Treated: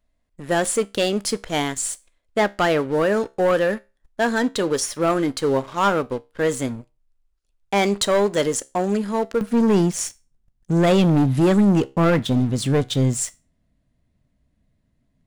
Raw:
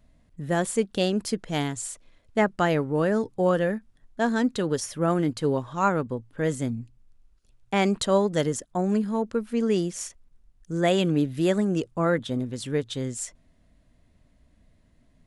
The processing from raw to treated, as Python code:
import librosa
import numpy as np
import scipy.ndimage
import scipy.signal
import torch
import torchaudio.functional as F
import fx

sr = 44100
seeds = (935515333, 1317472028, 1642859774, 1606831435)

y = fx.peak_eq(x, sr, hz=140.0, db=fx.steps((0.0, -10.5), (9.41, 5.5)), octaves=1.9)
y = fx.leveller(y, sr, passes=3)
y = fx.comb_fb(y, sr, f0_hz=67.0, decay_s=0.28, harmonics='all', damping=0.0, mix_pct=40)